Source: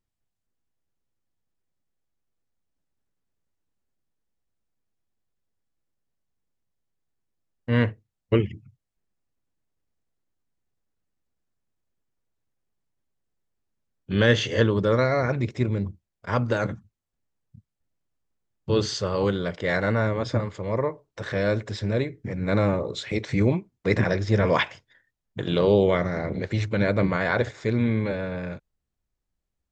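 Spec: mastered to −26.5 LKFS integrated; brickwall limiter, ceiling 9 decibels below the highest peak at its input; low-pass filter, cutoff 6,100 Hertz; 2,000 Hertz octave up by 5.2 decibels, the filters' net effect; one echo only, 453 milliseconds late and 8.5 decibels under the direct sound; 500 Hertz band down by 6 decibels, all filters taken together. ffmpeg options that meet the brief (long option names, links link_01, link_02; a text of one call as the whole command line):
ffmpeg -i in.wav -af "lowpass=6100,equalizer=frequency=500:width_type=o:gain=-7.5,equalizer=frequency=2000:width_type=o:gain=7,alimiter=limit=-14.5dB:level=0:latency=1,aecho=1:1:453:0.376,volume=1dB" out.wav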